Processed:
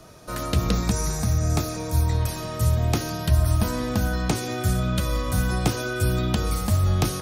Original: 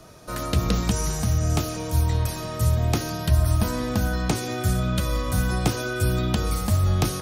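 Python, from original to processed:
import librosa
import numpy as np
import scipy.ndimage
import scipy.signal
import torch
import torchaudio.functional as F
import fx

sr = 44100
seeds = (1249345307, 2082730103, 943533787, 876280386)

y = fx.notch(x, sr, hz=3000.0, q=5.1, at=(0.72, 2.21))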